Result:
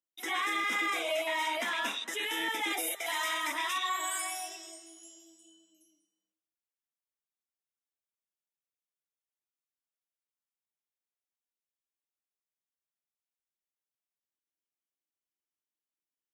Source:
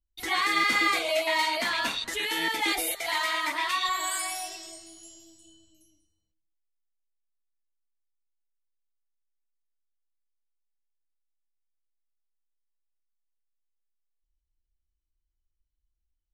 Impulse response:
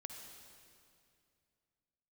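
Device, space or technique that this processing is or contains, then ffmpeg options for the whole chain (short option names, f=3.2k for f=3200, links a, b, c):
PA system with an anti-feedback notch: -filter_complex "[0:a]highpass=f=200:w=0.5412,highpass=f=200:w=1.3066,asettb=1/sr,asplit=3[a][b][c];[a]atrim=end=3.064[d];[b]atrim=start=3.06:end=3.78,asetpts=PTS-STARTPTS,afade=t=in:d=0.004:c=qsin,afade=t=out:st=0.716:d=0.004:c=qsin,bass=f=250:g=5,treble=f=4k:g=6[e];[c]atrim=start=3.776[f];[d][e]acrossfade=d=0.004:c1=hsin:c2=qsin[g];[g][f]acrossfade=d=0.004:c1=qsin:c2=hsin,highpass=f=170:w=0.5412,highpass=f=170:w=1.3066,asuperstop=centerf=4400:order=4:qfactor=4,alimiter=limit=-20dB:level=0:latency=1:release=15,volume=-3.5dB"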